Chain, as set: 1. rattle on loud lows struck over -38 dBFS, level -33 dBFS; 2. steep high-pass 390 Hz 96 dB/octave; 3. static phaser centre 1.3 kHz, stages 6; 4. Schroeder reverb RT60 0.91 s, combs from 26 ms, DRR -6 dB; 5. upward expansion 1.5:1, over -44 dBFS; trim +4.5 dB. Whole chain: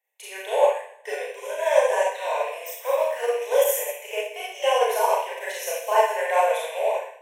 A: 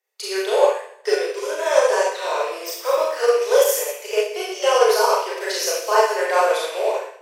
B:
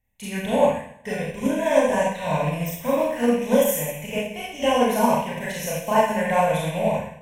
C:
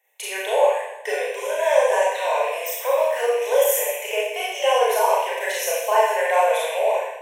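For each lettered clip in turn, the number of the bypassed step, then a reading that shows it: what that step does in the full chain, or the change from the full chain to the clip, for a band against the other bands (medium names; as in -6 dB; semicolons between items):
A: 3, 4 kHz band +3.0 dB; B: 2, momentary loudness spread change -2 LU; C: 5, crest factor change -2.5 dB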